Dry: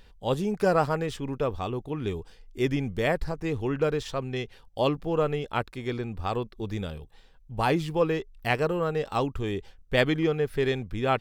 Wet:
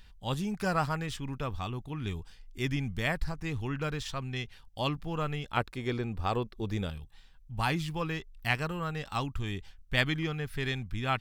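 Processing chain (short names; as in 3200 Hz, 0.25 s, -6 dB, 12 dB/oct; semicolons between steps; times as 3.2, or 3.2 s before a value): bell 460 Hz -13.5 dB 1.4 oct, from 5.57 s -2.5 dB, from 6.9 s -15 dB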